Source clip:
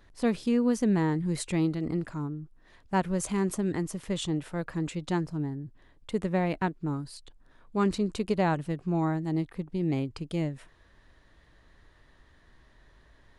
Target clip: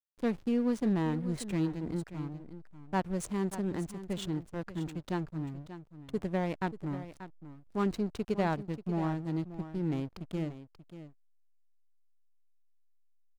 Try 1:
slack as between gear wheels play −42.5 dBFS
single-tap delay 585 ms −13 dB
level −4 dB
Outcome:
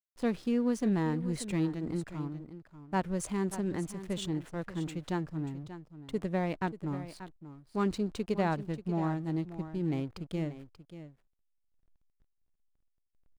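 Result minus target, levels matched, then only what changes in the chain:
slack as between gear wheels: distortion −8 dB
change: slack as between gear wheels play −33 dBFS

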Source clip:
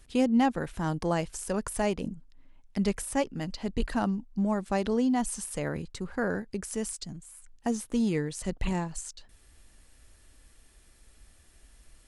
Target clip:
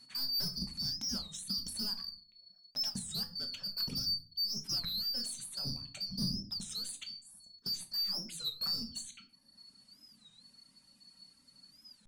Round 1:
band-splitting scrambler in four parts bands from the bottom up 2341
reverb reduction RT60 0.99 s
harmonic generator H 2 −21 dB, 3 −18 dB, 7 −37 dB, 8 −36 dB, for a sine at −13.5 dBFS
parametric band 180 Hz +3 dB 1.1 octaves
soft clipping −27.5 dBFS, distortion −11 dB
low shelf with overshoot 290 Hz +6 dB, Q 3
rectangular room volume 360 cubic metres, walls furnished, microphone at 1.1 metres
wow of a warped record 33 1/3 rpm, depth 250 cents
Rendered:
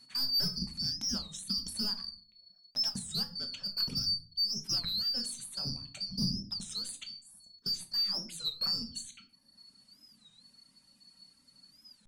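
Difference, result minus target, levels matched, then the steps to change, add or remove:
soft clipping: distortion −4 dB
change: soft clipping −33.5 dBFS, distortion −6 dB

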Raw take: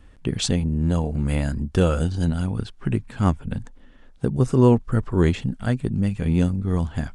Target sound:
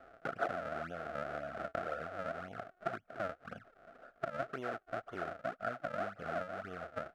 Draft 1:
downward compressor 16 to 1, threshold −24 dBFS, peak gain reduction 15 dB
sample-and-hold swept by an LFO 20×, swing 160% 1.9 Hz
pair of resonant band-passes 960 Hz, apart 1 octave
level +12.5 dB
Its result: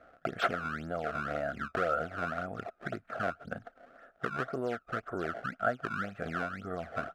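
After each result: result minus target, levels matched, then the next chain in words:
downward compressor: peak gain reduction −8.5 dB; sample-and-hold swept by an LFO: distortion −10 dB
downward compressor 16 to 1, threshold −33 dBFS, peak gain reduction 23.5 dB
sample-and-hold swept by an LFO 20×, swing 160% 1.9 Hz
pair of resonant band-passes 960 Hz, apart 1 octave
level +12.5 dB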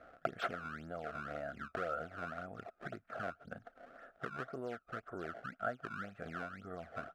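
sample-and-hold swept by an LFO: distortion −10 dB
downward compressor 16 to 1, threshold −33 dBFS, peak gain reduction 23.5 dB
sample-and-hold swept by an LFO 68×, swing 160% 1.9 Hz
pair of resonant band-passes 960 Hz, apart 1 octave
level +12.5 dB

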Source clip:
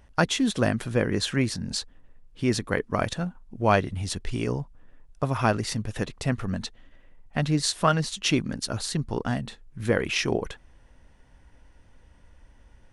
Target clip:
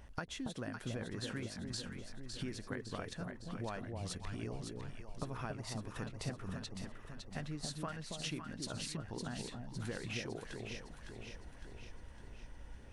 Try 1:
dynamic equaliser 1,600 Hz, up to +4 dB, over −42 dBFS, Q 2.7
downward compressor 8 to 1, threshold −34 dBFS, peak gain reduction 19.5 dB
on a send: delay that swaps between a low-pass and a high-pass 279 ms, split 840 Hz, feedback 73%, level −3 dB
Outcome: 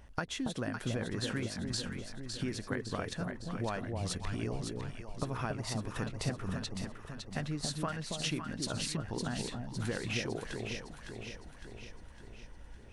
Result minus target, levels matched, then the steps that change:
downward compressor: peak gain reduction −6 dB
change: downward compressor 8 to 1, threshold −41 dBFS, peak gain reduction 25.5 dB

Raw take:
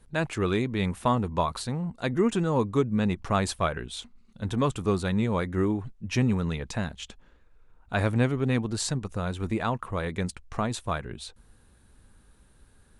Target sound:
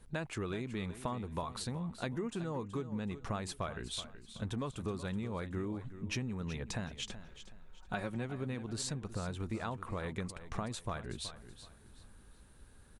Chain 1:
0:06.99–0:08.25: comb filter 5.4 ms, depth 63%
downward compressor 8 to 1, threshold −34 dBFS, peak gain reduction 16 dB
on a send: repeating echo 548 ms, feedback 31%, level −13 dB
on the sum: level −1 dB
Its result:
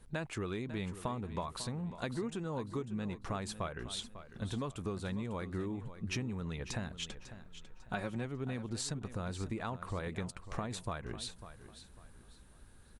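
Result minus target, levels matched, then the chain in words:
echo 173 ms late
0:06.99–0:08.25: comb filter 5.4 ms, depth 63%
downward compressor 8 to 1, threshold −34 dBFS, peak gain reduction 16 dB
on a send: repeating echo 375 ms, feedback 31%, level −13 dB
on the sum: level −1 dB

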